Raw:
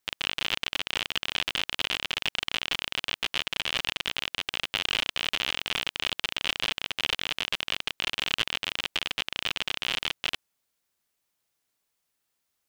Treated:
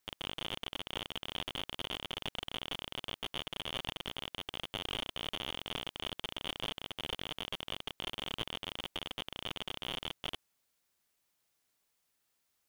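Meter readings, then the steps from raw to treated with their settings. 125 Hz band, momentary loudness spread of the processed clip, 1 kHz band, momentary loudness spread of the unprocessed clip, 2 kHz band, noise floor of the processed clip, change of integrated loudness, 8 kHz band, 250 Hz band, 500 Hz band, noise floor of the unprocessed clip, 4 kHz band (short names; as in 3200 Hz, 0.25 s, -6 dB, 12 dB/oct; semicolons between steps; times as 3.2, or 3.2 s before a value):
-2.0 dB, 2 LU, -7.0 dB, 2 LU, -14.5 dB, -79 dBFS, -11.0 dB, -12.5 dB, -2.5 dB, -3.5 dB, -80 dBFS, -10.0 dB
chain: slew limiter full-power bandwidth 90 Hz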